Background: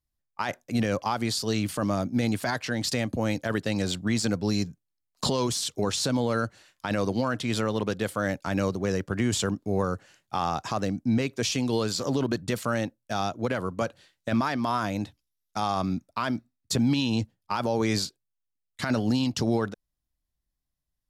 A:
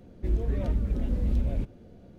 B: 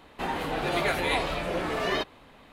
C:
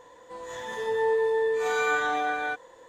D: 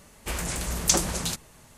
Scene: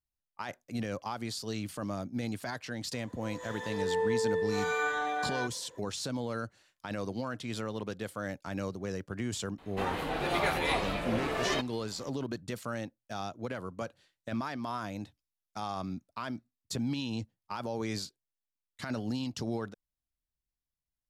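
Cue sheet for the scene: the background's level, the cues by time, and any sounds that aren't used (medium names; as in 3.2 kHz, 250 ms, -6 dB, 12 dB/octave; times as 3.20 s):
background -9.5 dB
2.92 s: add C -5.5 dB
9.58 s: add B -3.5 dB
not used: A, D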